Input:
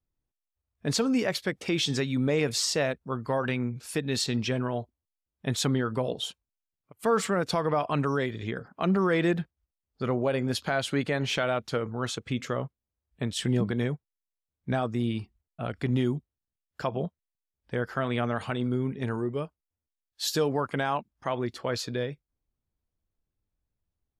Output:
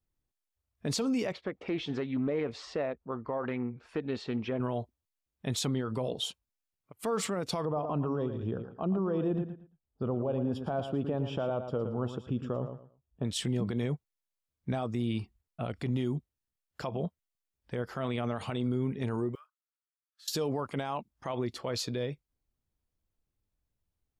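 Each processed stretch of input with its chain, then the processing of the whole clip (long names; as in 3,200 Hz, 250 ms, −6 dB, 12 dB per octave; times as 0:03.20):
0:01.32–0:04.60: low-pass filter 1,700 Hz + parametric band 130 Hz −9.5 dB 1.4 octaves + highs frequency-modulated by the lows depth 0.13 ms
0:07.65–0:13.25: moving average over 21 samples + repeating echo 113 ms, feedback 23%, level −10.5 dB
0:19.35–0:20.28: one scale factor per block 7 bits + four-pole ladder high-pass 1,200 Hz, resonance 75% + downward compressor 3 to 1, threshold −57 dBFS
whole clip: brickwall limiter −23 dBFS; dynamic equaliser 1,600 Hz, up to −7 dB, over −54 dBFS, Q 2.8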